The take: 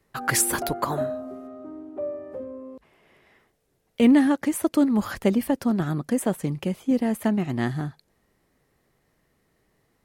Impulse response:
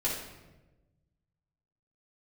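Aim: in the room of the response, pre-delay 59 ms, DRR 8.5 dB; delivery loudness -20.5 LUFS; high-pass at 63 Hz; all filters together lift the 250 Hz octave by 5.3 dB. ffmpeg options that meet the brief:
-filter_complex "[0:a]highpass=63,equalizer=f=250:t=o:g=6,asplit=2[a][b];[1:a]atrim=start_sample=2205,adelay=59[c];[b][c]afir=irnorm=-1:irlink=0,volume=-15dB[d];[a][d]amix=inputs=2:normalize=0,volume=-2dB"

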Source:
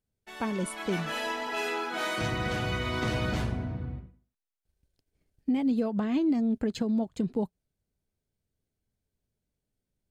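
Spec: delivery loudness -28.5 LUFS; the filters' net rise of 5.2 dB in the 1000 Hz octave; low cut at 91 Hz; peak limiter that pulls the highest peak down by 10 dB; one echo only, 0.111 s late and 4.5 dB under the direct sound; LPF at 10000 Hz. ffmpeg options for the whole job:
-af "highpass=91,lowpass=10k,equalizer=f=1k:t=o:g=6.5,alimiter=level_in=2.5dB:limit=-24dB:level=0:latency=1,volume=-2.5dB,aecho=1:1:111:0.596,volume=4.5dB"

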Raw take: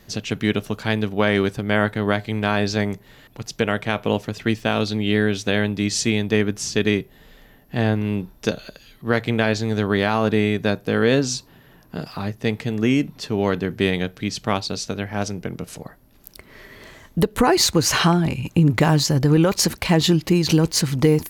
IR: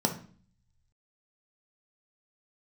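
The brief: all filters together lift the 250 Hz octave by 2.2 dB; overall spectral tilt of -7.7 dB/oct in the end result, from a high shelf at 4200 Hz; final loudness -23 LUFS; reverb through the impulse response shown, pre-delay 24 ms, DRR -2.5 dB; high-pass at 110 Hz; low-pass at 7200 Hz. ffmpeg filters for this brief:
-filter_complex "[0:a]highpass=110,lowpass=7.2k,equalizer=f=250:t=o:g=3.5,highshelf=f=4.2k:g=-4,asplit=2[a][b];[1:a]atrim=start_sample=2205,adelay=24[c];[b][c]afir=irnorm=-1:irlink=0,volume=-6.5dB[d];[a][d]amix=inputs=2:normalize=0,volume=-13dB"

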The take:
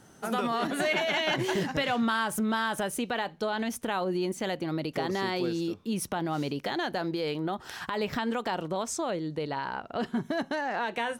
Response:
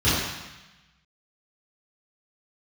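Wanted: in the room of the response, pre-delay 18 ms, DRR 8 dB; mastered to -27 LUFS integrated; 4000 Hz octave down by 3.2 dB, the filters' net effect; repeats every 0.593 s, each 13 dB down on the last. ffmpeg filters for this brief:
-filter_complex "[0:a]equalizer=f=4k:t=o:g=-4.5,aecho=1:1:593|1186|1779:0.224|0.0493|0.0108,asplit=2[a][b];[1:a]atrim=start_sample=2205,adelay=18[c];[b][c]afir=irnorm=-1:irlink=0,volume=-26dB[d];[a][d]amix=inputs=2:normalize=0,volume=2.5dB"

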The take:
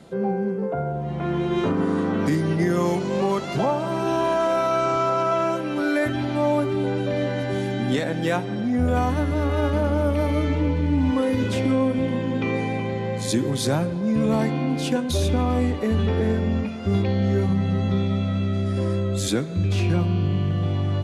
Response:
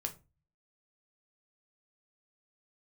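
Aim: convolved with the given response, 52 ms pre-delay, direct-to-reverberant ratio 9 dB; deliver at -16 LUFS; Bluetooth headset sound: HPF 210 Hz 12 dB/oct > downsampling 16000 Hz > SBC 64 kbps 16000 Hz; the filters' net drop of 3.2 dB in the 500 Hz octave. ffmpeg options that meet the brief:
-filter_complex "[0:a]equalizer=f=500:t=o:g=-4,asplit=2[a][b];[1:a]atrim=start_sample=2205,adelay=52[c];[b][c]afir=irnorm=-1:irlink=0,volume=-9dB[d];[a][d]amix=inputs=2:normalize=0,highpass=210,aresample=16000,aresample=44100,volume=10.5dB" -ar 16000 -c:a sbc -b:a 64k

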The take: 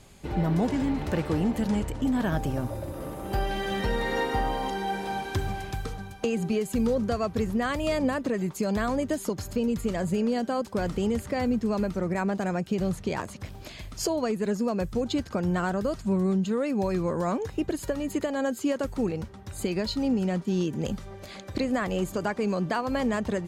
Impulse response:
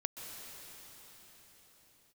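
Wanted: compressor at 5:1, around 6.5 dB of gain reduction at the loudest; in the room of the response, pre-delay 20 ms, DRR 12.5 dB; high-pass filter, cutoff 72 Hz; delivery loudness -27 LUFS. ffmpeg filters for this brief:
-filter_complex "[0:a]highpass=72,acompressor=threshold=-29dB:ratio=5,asplit=2[a][b];[1:a]atrim=start_sample=2205,adelay=20[c];[b][c]afir=irnorm=-1:irlink=0,volume=-13dB[d];[a][d]amix=inputs=2:normalize=0,volume=6.5dB"

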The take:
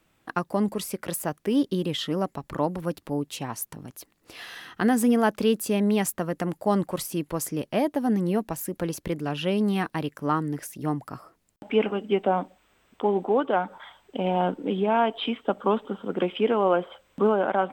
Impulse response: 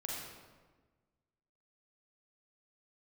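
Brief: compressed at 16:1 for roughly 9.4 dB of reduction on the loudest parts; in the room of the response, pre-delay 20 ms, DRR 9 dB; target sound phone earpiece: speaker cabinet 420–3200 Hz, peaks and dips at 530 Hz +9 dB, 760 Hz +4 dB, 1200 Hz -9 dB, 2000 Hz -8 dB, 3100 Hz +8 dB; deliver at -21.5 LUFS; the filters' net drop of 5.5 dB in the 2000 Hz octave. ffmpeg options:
-filter_complex "[0:a]equalizer=f=2k:t=o:g=-4,acompressor=threshold=-26dB:ratio=16,asplit=2[a][b];[1:a]atrim=start_sample=2205,adelay=20[c];[b][c]afir=irnorm=-1:irlink=0,volume=-10dB[d];[a][d]amix=inputs=2:normalize=0,highpass=420,equalizer=f=530:t=q:w=4:g=9,equalizer=f=760:t=q:w=4:g=4,equalizer=f=1.2k:t=q:w=4:g=-9,equalizer=f=2k:t=q:w=4:g=-8,equalizer=f=3.1k:t=q:w=4:g=8,lowpass=f=3.2k:w=0.5412,lowpass=f=3.2k:w=1.3066,volume=11dB"

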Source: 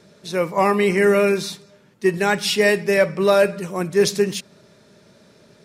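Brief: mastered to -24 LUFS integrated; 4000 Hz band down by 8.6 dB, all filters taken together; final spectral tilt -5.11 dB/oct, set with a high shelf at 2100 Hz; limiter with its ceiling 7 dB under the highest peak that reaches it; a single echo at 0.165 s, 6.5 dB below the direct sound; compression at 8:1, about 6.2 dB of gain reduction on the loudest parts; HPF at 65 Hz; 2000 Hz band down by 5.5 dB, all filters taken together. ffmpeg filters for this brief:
-af "highpass=65,equalizer=f=2k:t=o:g=-3,highshelf=f=2.1k:g=-4.5,equalizer=f=4k:t=o:g=-6,acompressor=threshold=-18dB:ratio=8,alimiter=limit=-17.5dB:level=0:latency=1,aecho=1:1:165:0.473,volume=3dB"

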